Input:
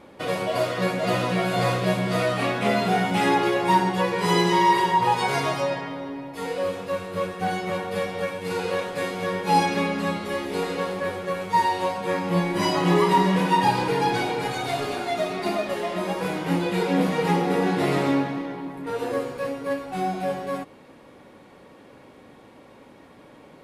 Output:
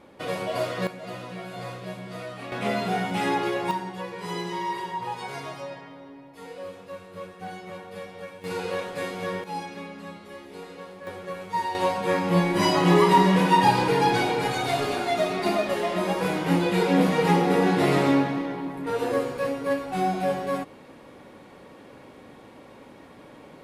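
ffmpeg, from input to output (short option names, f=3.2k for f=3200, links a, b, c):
-af "asetnsamples=n=441:p=0,asendcmd='0.87 volume volume -13.5dB;2.52 volume volume -4.5dB;3.71 volume volume -11.5dB;8.44 volume volume -3.5dB;9.44 volume volume -14dB;11.07 volume volume -7dB;11.75 volume volume 1.5dB',volume=-3.5dB"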